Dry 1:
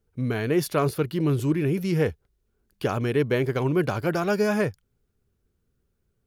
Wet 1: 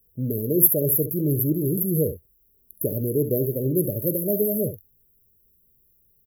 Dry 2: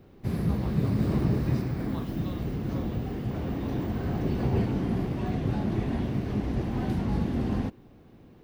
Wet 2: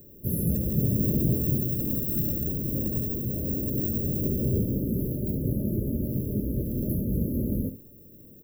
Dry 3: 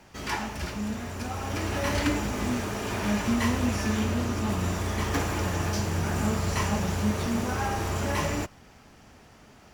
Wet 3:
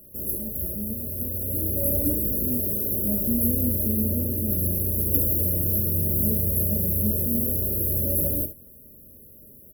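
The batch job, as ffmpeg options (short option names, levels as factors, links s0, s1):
-af "afftfilt=real='re*(1-between(b*sr/4096,630,11000))':imag='im*(1-between(b*sr/4096,630,11000))':win_size=4096:overlap=0.75,aexciter=amount=11.1:drive=8.1:freq=8700,aecho=1:1:46|69:0.141|0.251"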